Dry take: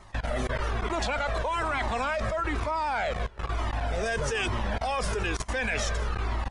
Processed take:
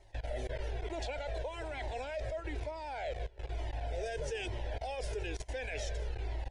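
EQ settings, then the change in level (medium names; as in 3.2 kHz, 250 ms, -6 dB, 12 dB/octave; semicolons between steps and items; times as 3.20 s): treble shelf 4.6 kHz -7.5 dB; static phaser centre 490 Hz, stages 4; -6.5 dB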